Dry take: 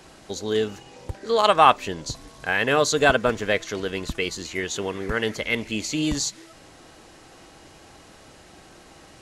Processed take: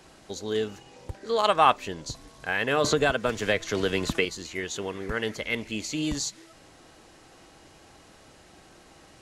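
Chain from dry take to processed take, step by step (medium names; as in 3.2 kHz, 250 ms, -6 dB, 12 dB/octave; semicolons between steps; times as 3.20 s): 2.84–4.25 s: three bands compressed up and down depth 100%; trim -4.5 dB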